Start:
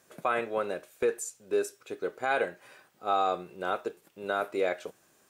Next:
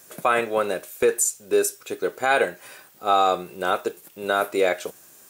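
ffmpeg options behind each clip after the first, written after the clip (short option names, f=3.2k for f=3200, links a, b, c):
-af "aemphasis=mode=production:type=50kf,volume=7.5dB"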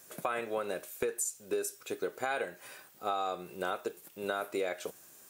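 -af "acompressor=threshold=-24dB:ratio=6,volume=-6dB"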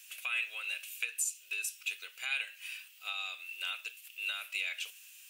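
-af "highpass=f=2.7k:t=q:w=7.7"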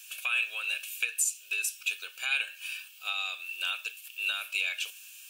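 -af "asuperstop=centerf=2000:order=20:qfactor=6.5,volume=5.5dB"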